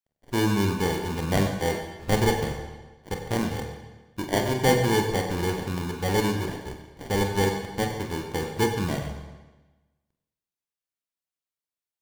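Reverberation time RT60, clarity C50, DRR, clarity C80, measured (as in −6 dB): 1.2 s, 5.5 dB, 2.5 dB, 6.5 dB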